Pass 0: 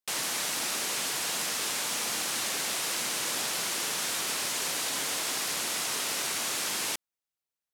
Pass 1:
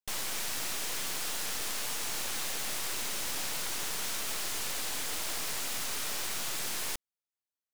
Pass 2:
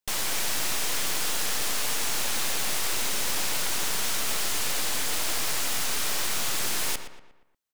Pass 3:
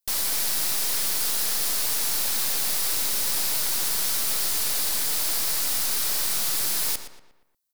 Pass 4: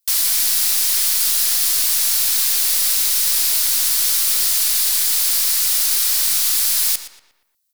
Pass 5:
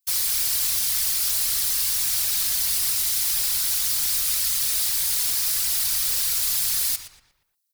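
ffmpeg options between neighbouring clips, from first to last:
-af "aeval=exprs='0.126*(cos(1*acos(clip(val(0)/0.126,-1,1)))-cos(1*PI/2))+0.0398*(cos(8*acos(clip(val(0)/0.126,-1,1)))-cos(8*PI/2))':c=same,volume=0.422"
-filter_complex "[0:a]asplit=2[s0][s1];[s1]adelay=118,lowpass=f=3100:p=1,volume=0.355,asplit=2[s2][s3];[s3]adelay=118,lowpass=f=3100:p=1,volume=0.47,asplit=2[s4][s5];[s5]adelay=118,lowpass=f=3100:p=1,volume=0.47,asplit=2[s6][s7];[s7]adelay=118,lowpass=f=3100:p=1,volume=0.47,asplit=2[s8][s9];[s9]adelay=118,lowpass=f=3100:p=1,volume=0.47[s10];[s0][s2][s4][s6][s8][s10]amix=inputs=6:normalize=0,volume=2.11"
-af "aexciter=amount=1.1:drive=9.8:freq=4000,volume=0.708"
-af "tiltshelf=f=1100:g=-9"
-af "afftfilt=real='hypot(re,im)*cos(2*PI*random(0))':imag='hypot(re,im)*sin(2*PI*random(1))':win_size=512:overlap=0.75"

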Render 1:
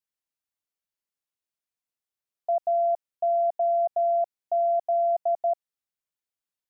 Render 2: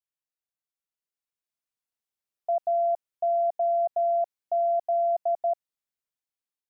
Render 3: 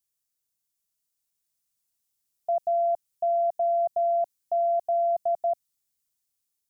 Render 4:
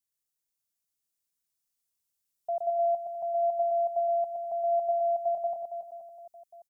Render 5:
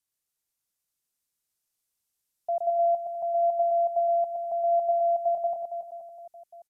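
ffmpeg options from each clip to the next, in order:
-af "dynaudnorm=f=550:g=5:m=2,volume=0.447"
-af "bass=f=250:g=9,treble=f=4000:g=14"
-af "aecho=1:1:120|276|478.8|742.4|1085:0.631|0.398|0.251|0.158|0.1,volume=0.531"
-af "aresample=32000,aresample=44100,volume=1.41"

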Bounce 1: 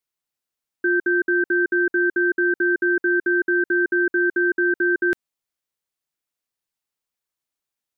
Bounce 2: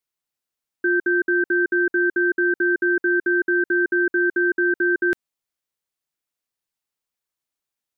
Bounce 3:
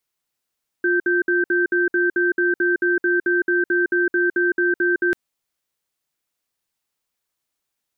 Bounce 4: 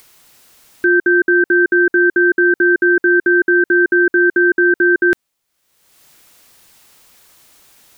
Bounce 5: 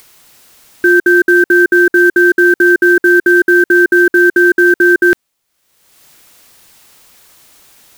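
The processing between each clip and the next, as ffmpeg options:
-af anull
-af "alimiter=limit=0.119:level=0:latency=1:release=27,volume=2"
-af "acompressor=mode=upward:threshold=0.0158:ratio=2.5,volume=2.24"
-af "acrusher=bits=6:mode=log:mix=0:aa=0.000001,volume=1.58"

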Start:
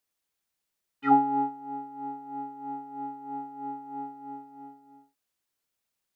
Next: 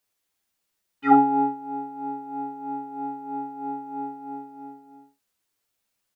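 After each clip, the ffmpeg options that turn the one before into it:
-af "aecho=1:1:10|46|60:0.708|0.282|0.447,volume=1.33"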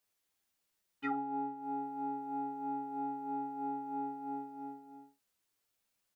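-af "acompressor=threshold=0.0316:ratio=8,volume=0.631"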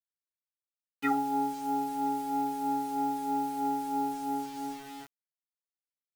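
-af "acrusher=bits=8:mix=0:aa=0.000001,volume=2.37"

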